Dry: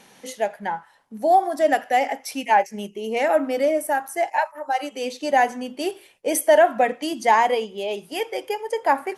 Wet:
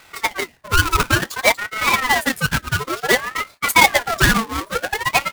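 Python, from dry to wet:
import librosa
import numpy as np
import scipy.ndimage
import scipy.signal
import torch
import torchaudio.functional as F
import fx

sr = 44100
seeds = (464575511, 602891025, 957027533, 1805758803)

y = fx.halfwave_hold(x, sr)
y = fx.stretch_grains(y, sr, factor=0.58, grain_ms=57.0)
y = fx.ring_lfo(y, sr, carrier_hz=1200.0, swing_pct=45, hz=0.56)
y = F.gain(torch.from_numpy(y), 3.5).numpy()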